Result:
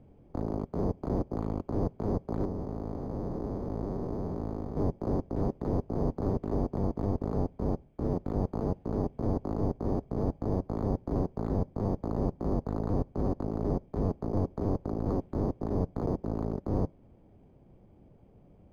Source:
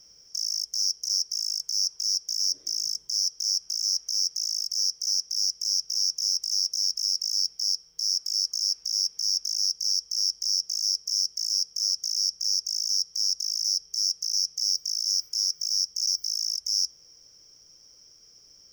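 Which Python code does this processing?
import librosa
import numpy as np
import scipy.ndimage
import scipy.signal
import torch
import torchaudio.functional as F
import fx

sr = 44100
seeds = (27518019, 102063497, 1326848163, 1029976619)

y = fx.spec_blur(x, sr, span_ms=431.0, at=(2.45, 4.77))
y = scipy.signal.sosfilt(scipy.signal.cheby1(3, 1.0, 6200.0, 'lowpass', fs=sr, output='sos'), y)
y = fx.peak_eq(y, sr, hz=960.0, db=-13.0, octaves=1.5)
y = np.interp(np.arange(len(y)), np.arange(len(y))[::8], y[::8])
y = y * 10.0 ** (-2.0 / 20.0)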